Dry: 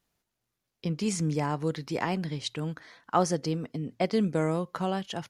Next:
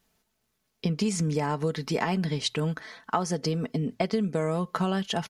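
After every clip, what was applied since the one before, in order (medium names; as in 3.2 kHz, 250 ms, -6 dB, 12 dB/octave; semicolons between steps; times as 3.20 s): comb 4.6 ms, depth 44%; compression 12:1, threshold -29 dBFS, peak gain reduction 12.5 dB; trim +6.5 dB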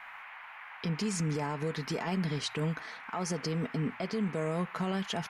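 peak limiter -22 dBFS, peak gain reduction 10.5 dB; band noise 770–2400 Hz -45 dBFS; trim -2.5 dB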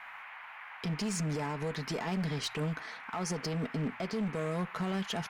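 one-sided clip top -30.5 dBFS, bottom -27 dBFS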